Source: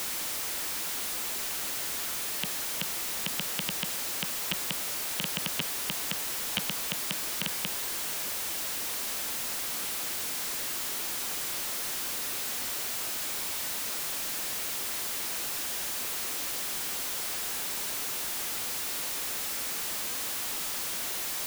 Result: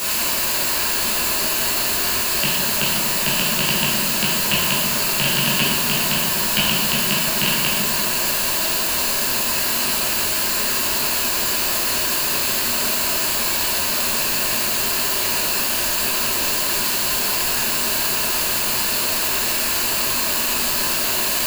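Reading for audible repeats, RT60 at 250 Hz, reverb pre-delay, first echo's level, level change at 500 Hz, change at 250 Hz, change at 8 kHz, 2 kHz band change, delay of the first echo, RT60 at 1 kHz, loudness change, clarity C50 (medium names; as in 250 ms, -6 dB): no echo, 2.1 s, 14 ms, no echo, +16.0 dB, +16.5 dB, +11.5 dB, +15.0 dB, no echo, 1.5 s, +13.0 dB, 0.5 dB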